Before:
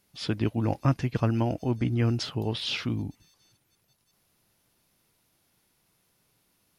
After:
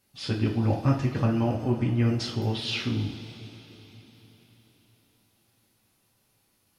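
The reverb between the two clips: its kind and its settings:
coupled-rooms reverb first 0.4 s, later 4.4 s, from −18 dB, DRR −2 dB
level −3.5 dB

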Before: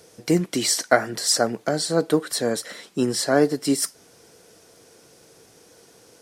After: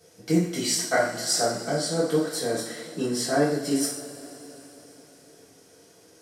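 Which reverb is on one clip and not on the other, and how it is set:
coupled-rooms reverb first 0.52 s, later 4.3 s, from −19 dB, DRR −8 dB
level −12 dB

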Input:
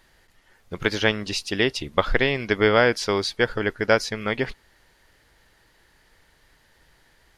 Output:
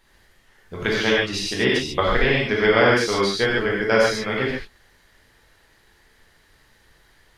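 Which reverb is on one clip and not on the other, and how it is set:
reverb whose tail is shaped and stops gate 170 ms flat, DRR −5.5 dB
level −4 dB

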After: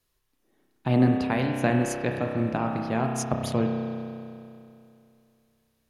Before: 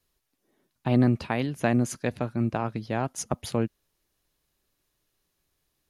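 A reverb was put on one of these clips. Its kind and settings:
spring reverb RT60 2.6 s, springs 31 ms, chirp 75 ms, DRR 1 dB

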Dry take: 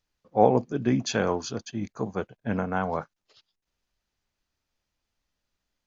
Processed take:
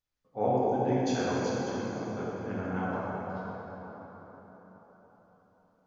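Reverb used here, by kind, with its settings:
dense smooth reverb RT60 4.8 s, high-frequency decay 0.5×, DRR −7.5 dB
level −12.5 dB

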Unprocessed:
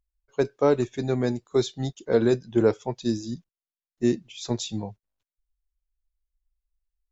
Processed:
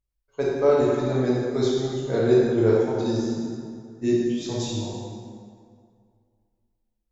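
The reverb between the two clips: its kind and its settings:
dense smooth reverb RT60 2.2 s, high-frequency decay 0.65×, DRR −6.5 dB
level −5.5 dB

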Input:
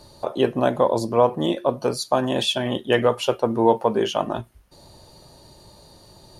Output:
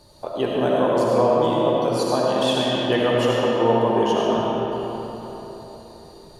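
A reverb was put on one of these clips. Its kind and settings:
comb and all-pass reverb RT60 4 s, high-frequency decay 0.6×, pre-delay 35 ms, DRR −5 dB
level −4.5 dB

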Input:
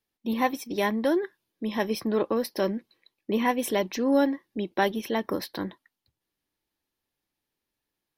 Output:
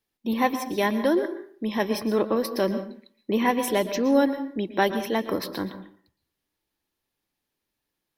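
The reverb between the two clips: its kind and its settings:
dense smooth reverb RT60 0.5 s, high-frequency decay 0.65×, pre-delay 105 ms, DRR 10.5 dB
level +2 dB

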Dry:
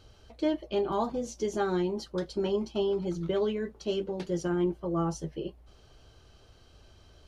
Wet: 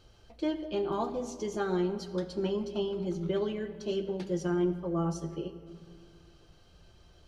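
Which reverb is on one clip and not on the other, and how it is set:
rectangular room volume 3,800 cubic metres, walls mixed, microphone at 0.86 metres
level −3 dB

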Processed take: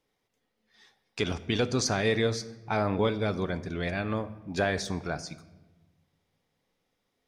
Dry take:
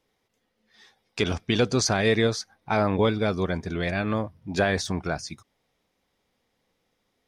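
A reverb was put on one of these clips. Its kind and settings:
rectangular room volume 600 cubic metres, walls mixed, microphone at 0.32 metres
level −4.5 dB

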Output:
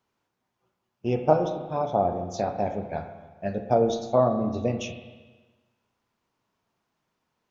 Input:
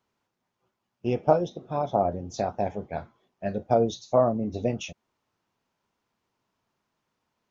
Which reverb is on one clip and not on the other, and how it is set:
spring reverb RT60 1.3 s, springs 32/39/50 ms, chirp 65 ms, DRR 6.5 dB

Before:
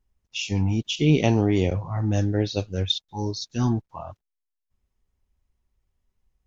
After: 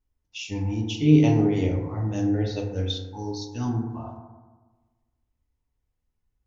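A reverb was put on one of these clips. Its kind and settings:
feedback delay network reverb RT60 1.3 s, low-frequency decay 1.1×, high-frequency decay 0.3×, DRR −0.5 dB
level −7 dB

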